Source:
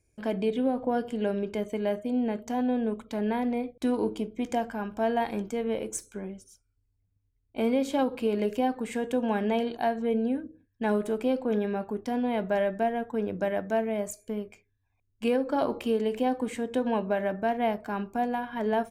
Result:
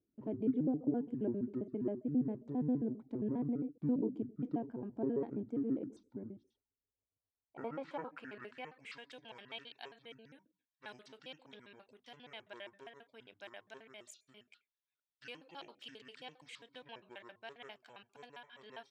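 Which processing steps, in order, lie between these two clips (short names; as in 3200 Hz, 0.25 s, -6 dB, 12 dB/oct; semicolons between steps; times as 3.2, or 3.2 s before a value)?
trilling pitch shifter -9 st, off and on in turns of 67 ms; band-pass sweep 290 Hz -> 3400 Hz, 6.32–9.2; gain -2 dB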